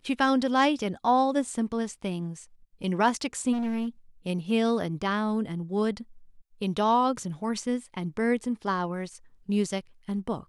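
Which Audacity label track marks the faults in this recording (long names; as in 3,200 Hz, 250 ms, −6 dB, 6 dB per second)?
3.520000	3.880000	clipping −26.5 dBFS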